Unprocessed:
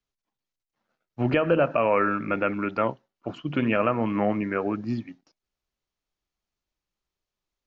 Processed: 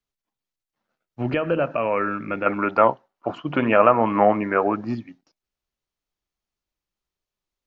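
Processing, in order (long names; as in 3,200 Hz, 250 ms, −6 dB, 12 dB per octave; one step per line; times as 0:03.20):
0:02.46–0:04.95: parametric band 870 Hz +13 dB 2.1 octaves
level −1 dB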